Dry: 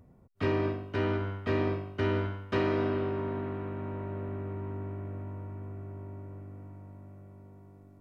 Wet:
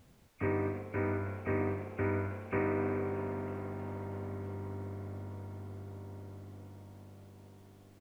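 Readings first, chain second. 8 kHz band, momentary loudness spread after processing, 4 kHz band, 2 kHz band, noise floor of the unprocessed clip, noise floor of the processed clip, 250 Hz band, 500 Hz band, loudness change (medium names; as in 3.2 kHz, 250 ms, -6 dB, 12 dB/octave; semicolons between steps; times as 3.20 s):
no reading, 18 LU, under -15 dB, -3.0 dB, -57 dBFS, -60 dBFS, -4.0 dB, -4.0 dB, -4.0 dB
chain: knee-point frequency compression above 2.1 kHz 4:1; frequency-shifting echo 317 ms, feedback 60%, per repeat +130 Hz, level -17 dB; added noise pink -64 dBFS; trim -4 dB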